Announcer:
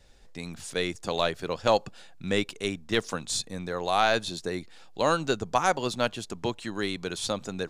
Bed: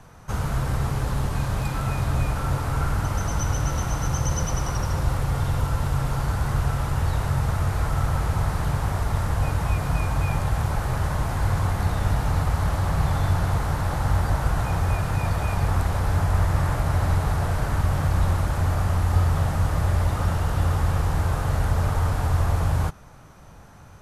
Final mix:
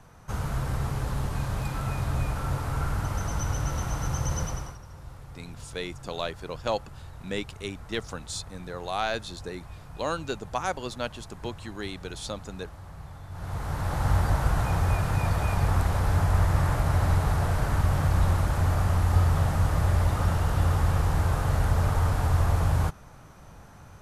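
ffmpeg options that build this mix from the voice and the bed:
ffmpeg -i stem1.wav -i stem2.wav -filter_complex "[0:a]adelay=5000,volume=-5.5dB[link_01];[1:a]volume=14.5dB,afade=type=out:start_time=4.41:duration=0.37:silence=0.158489,afade=type=in:start_time=13.3:duration=0.8:silence=0.112202[link_02];[link_01][link_02]amix=inputs=2:normalize=0" out.wav

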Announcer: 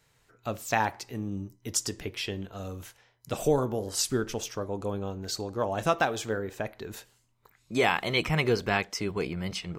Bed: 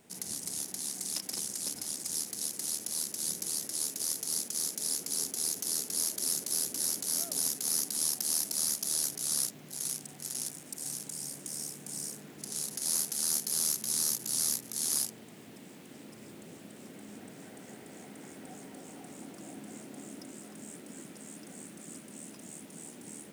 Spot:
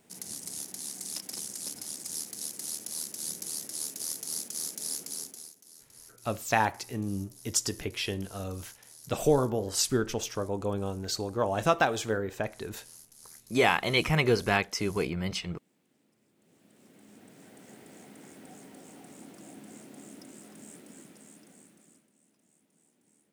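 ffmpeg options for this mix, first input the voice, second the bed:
ffmpeg -i stem1.wav -i stem2.wav -filter_complex "[0:a]adelay=5800,volume=1dB[link_01];[1:a]volume=17dB,afade=type=out:start_time=5:duration=0.53:silence=0.105925,afade=type=in:start_time=16.35:duration=1.46:silence=0.112202,afade=type=out:start_time=20.74:duration=1.38:silence=0.1[link_02];[link_01][link_02]amix=inputs=2:normalize=0" out.wav

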